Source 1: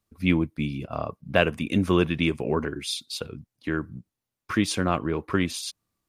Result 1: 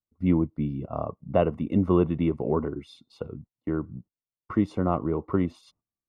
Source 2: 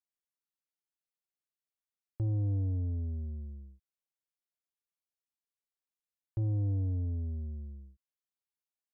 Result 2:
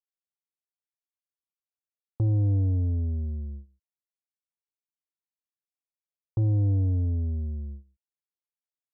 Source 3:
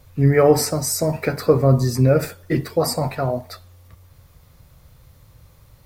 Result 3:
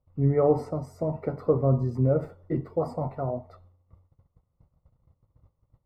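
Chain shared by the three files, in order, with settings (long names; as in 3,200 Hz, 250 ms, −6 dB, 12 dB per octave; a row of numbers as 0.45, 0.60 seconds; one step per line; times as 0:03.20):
noise gate −46 dBFS, range −17 dB
Savitzky-Golay smoothing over 65 samples
loudness normalisation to −27 LKFS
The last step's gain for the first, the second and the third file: 0.0, +7.5, −7.5 decibels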